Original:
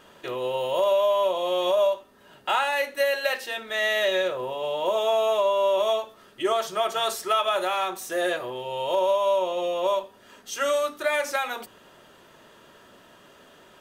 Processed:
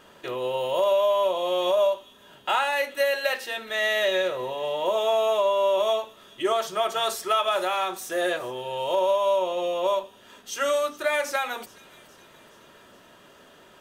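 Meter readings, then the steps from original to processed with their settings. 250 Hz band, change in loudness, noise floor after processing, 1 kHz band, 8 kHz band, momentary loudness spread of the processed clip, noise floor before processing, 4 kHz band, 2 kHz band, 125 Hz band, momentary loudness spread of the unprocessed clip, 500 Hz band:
0.0 dB, 0.0 dB, -53 dBFS, 0.0 dB, 0.0 dB, 9 LU, -54 dBFS, 0.0 dB, 0.0 dB, no reading, 8 LU, 0.0 dB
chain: feedback echo behind a high-pass 420 ms, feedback 59%, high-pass 2.9 kHz, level -18 dB

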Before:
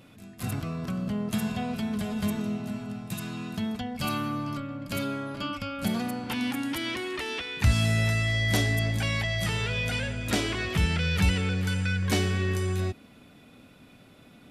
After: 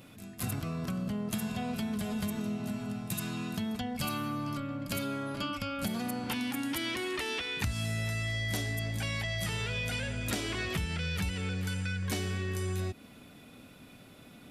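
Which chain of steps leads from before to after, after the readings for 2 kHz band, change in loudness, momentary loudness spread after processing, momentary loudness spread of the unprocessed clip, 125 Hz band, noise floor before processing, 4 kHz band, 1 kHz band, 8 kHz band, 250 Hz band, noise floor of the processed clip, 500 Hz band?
-5.5 dB, -5.5 dB, 7 LU, 9 LU, -7.0 dB, -53 dBFS, -4.5 dB, -4.0 dB, -2.5 dB, -4.5 dB, -53 dBFS, -5.0 dB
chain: compression 5:1, threshold -31 dBFS, peak gain reduction 13 dB; treble shelf 7.3 kHz +7 dB

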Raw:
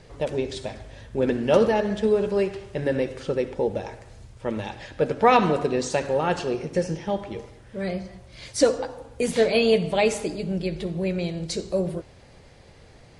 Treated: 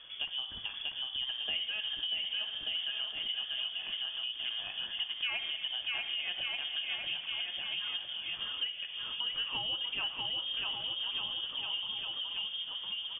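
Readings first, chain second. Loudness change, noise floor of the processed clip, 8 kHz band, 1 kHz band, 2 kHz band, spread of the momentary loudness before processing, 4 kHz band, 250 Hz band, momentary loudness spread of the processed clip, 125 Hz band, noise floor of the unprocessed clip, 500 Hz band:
-9.5 dB, -44 dBFS, under -40 dB, -21.5 dB, -5.0 dB, 15 LU, +7.5 dB, -33.5 dB, 3 LU, under -25 dB, -50 dBFS, -35.0 dB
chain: bouncing-ball echo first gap 640 ms, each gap 0.85×, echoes 5; compression 4:1, threshold -32 dBFS, peak gain reduction 16.5 dB; frequency inversion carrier 3.4 kHz; trim -3.5 dB

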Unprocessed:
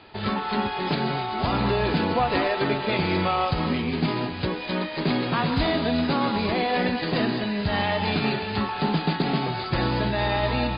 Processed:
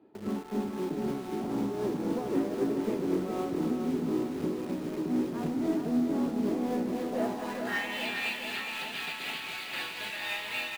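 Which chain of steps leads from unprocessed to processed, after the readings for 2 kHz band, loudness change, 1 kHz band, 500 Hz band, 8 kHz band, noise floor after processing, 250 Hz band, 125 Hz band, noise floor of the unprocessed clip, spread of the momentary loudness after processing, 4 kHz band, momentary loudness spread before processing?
-7.0 dB, -7.0 dB, -14.0 dB, -7.0 dB, no reading, -40 dBFS, -4.5 dB, -15.0 dB, -32 dBFS, 5 LU, -9.0 dB, 4 LU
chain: high-pass 190 Hz 6 dB/octave; bass shelf 370 Hz +5 dB; band-pass sweep 300 Hz -> 2.6 kHz, 6.87–7.94 s; in parallel at -11.5 dB: companded quantiser 2-bit; on the sum: tremolo triangle 3.9 Hz, depth 60%; on a send: feedback delay 416 ms, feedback 59%, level -6 dB; on the sum: trim -2 dB

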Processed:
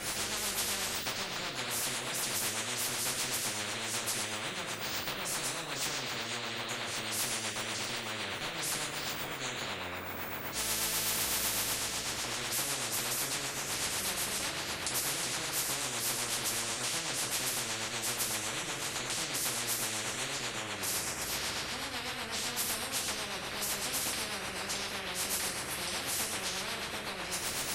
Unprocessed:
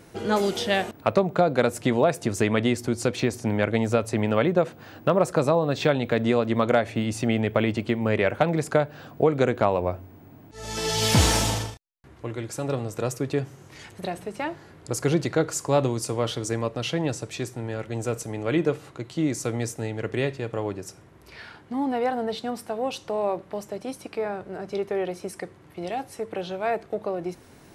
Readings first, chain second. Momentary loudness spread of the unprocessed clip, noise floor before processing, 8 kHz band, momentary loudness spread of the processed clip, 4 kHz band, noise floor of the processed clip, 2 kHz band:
13 LU, -51 dBFS, +3.5 dB, 5 LU, +1.0 dB, -40 dBFS, -3.0 dB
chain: compression, threshold -34 dBFS, peak gain reduction 18.5 dB; two-slope reverb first 0.5 s, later 4.2 s, from -22 dB, DRR -10 dB; rotary cabinet horn 8 Hz; spectrum-flattening compressor 10:1; trim -5 dB

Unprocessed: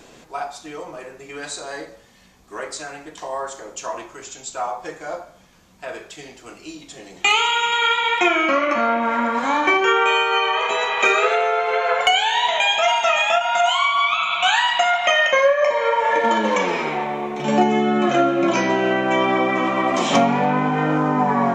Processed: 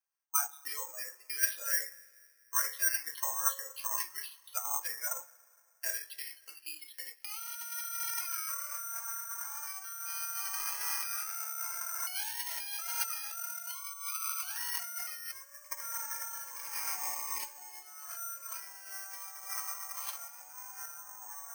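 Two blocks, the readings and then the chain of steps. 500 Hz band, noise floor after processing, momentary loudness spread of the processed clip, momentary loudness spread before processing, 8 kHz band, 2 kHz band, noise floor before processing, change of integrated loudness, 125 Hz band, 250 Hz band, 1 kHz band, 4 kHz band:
-37.0 dB, -63 dBFS, 12 LU, 18 LU, -0.5 dB, -22.0 dB, -48 dBFS, -17.0 dB, no reading, under -40 dB, -25.0 dB, -21.5 dB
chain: local Wiener filter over 9 samples; spectral noise reduction 19 dB; gate with hold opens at -35 dBFS; comb 3.7 ms, depth 35%; dynamic bell 1.4 kHz, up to +7 dB, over -37 dBFS, Q 5.5; peak limiter -14 dBFS, peak gain reduction 10.5 dB; compressor with a negative ratio -30 dBFS, ratio -0.5; ladder high-pass 900 Hz, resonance 25%; random-step tremolo; spring tank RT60 2.5 s, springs 33/57 ms, chirp 25 ms, DRR 20 dB; careless resampling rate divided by 6×, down filtered, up zero stuff; trim -1.5 dB

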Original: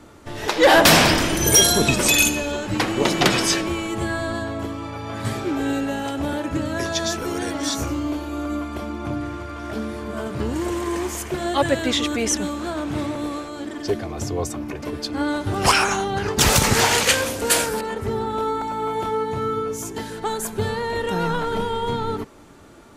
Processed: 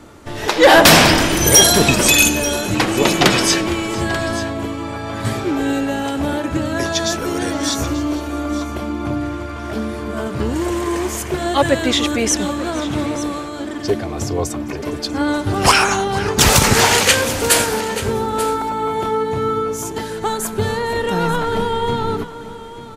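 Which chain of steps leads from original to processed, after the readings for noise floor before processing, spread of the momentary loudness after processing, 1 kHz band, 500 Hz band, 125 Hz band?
-34 dBFS, 14 LU, +4.5 dB, +4.5 dB, +4.5 dB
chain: multi-tap echo 460/887 ms -19.5/-15 dB; trim +4.5 dB

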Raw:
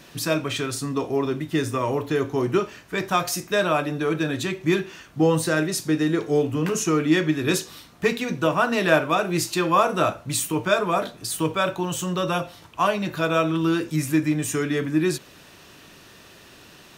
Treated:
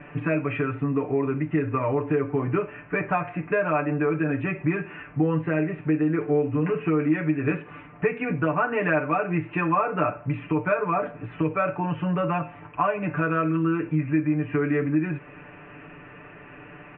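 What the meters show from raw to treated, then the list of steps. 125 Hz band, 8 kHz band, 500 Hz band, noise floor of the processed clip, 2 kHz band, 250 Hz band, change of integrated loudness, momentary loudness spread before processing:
+1.0 dB, under -40 dB, -2.5 dB, -46 dBFS, -2.5 dB, -1.0 dB, -2.0 dB, 6 LU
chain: steep low-pass 2.6 kHz 72 dB/octave; comb 6.8 ms, depth 84%; compression 2.5:1, threshold -27 dBFS, peak gain reduction 12 dB; trim +3 dB

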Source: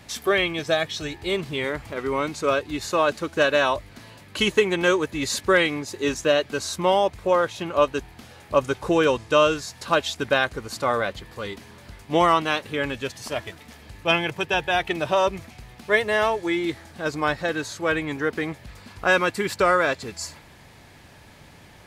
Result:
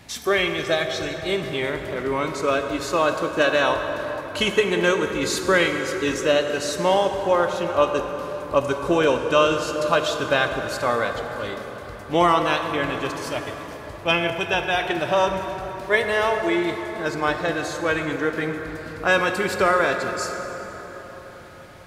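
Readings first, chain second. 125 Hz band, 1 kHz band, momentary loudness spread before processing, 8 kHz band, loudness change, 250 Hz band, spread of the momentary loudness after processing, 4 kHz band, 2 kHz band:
+1.5 dB, +1.5 dB, 11 LU, +0.5 dB, +1.0 dB, +1.5 dB, 11 LU, +1.0 dB, +1.5 dB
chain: plate-style reverb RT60 4.8 s, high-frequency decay 0.45×, DRR 4.5 dB

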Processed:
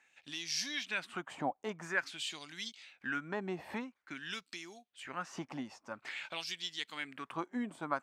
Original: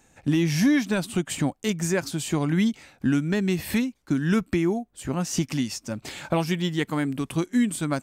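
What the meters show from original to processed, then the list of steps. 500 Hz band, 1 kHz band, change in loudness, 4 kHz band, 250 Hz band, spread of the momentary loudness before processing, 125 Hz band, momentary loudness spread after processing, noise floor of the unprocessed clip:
-15.0 dB, -6.5 dB, -14.5 dB, -5.5 dB, -21.0 dB, 6 LU, -25.5 dB, 9 LU, -61 dBFS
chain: LFO band-pass sine 0.49 Hz 770–4700 Hz; trim +1 dB

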